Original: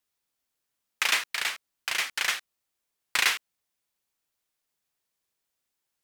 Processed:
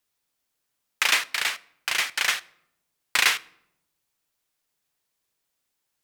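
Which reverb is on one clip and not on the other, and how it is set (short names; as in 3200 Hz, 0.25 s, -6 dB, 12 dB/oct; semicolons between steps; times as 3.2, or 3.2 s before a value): shoebox room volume 2200 m³, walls furnished, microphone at 0.39 m; gain +3.5 dB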